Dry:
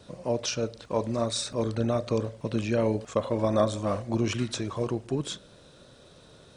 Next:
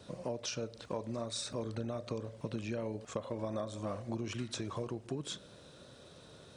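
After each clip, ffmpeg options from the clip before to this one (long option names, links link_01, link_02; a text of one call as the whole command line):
ffmpeg -i in.wav -af "highpass=56,acompressor=threshold=-33dB:ratio=6,volume=-2dB" out.wav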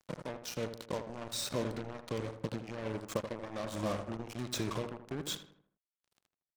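ffmpeg -i in.wav -filter_complex "[0:a]tremolo=f=1.3:d=0.68,acrusher=bits=6:mix=0:aa=0.5,asplit=2[link_01][link_02];[link_02]adelay=80,lowpass=frequency=1900:poles=1,volume=-9dB,asplit=2[link_03][link_04];[link_04]adelay=80,lowpass=frequency=1900:poles=1,volume=0.48,asplit=2[link_05][link_06];[link_06]adelay=80,lowpass=frequency=1900:poles=1,volume=0.48,asplit=2[link_07][link_08];[link_08]adelay=80,lowpass=frequency=1900:poles=1,volume=0.48,asplit=2[link_09][link_10];[link_10]adelay=80,lowpass=frequency=1900:poles=1,volume=0.48[link_11];[link_01][link_03][link_05][link_07][link_09][link_11]amix=inputs=6:normalize=0,volume=4dB" out.wav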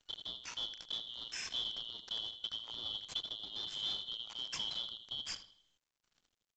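ffmpeg -i in.wav -af "afftfilt=real='real(if(lt(b,272),68*(eq(floor(b/68),0)*1+eq(floor(b/68),1)*3+eq(floor(b/68),2)*0+eq(floor(b/68),3)*2)+mod(b,68),b),0)':imag='imag(if(lt(b,272),68*(eq(floor(b/68),0)*1+eq(floor(b/68),1)*3+eq(floor(b/68),2)*0+eq(floor(b/68),3)*2)+mod(b,68),b),0)':win_size=2048:overlap=0.75,asoftclip=type=tanh:threshold=-25.5dB,volume=-3dB" -ar 16000 -c:a pcm_mulaw out.wav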